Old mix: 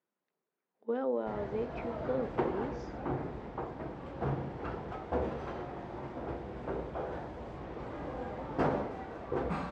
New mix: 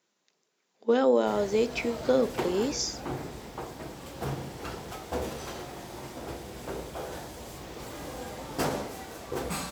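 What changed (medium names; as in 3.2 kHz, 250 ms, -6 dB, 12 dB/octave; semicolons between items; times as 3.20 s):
speech +10.0 dB; master: remove low-pass 1.6 kHz 12 dB/octave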